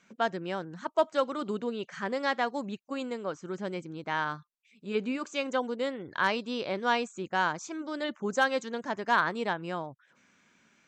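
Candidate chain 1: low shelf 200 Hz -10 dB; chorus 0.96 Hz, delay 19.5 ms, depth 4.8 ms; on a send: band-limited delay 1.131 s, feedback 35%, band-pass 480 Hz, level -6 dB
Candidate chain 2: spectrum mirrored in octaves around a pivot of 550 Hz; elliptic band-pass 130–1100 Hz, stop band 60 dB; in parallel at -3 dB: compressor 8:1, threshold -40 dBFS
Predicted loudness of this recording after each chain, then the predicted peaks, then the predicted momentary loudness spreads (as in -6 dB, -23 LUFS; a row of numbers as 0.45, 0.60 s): -35.0, -32.5 LUFS; -14.5, -13.0 dBFS; 10, 9 LU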